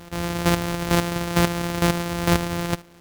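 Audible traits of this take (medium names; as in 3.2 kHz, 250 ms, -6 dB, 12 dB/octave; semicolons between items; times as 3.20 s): a buzz of ramps at a fixed pitch in blocks of 256 samples; chopped level 2.2 Hz, depth 65%, duty 20%; a quantiser's noise floor 10-bit, dither none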